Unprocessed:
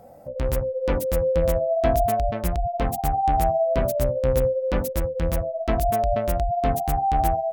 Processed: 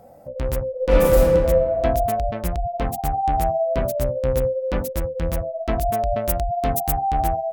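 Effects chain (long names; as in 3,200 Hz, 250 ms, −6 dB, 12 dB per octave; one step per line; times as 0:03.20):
0:00.70–0:01.30: thrown reverb, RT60 1.8 s, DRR −8 dB
0:06.24–0:06.98: high-shelf EQ 6,000 Hz +11.5 dB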